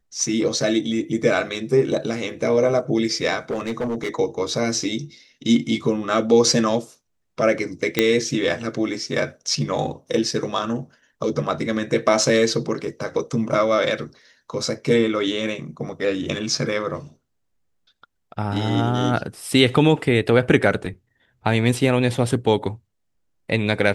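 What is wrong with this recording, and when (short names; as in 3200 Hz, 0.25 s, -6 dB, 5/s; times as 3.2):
3.5–4.15 clipped -20.5 dBFS
7.99 pop -2 dBFS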